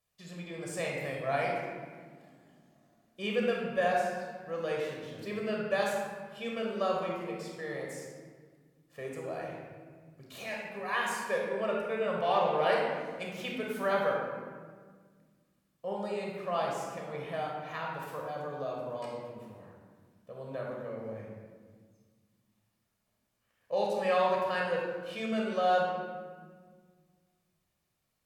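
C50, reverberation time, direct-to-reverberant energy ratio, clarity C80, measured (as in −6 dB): 0.5 dB, 1.6 s, −2.5 dB, 2.5 dB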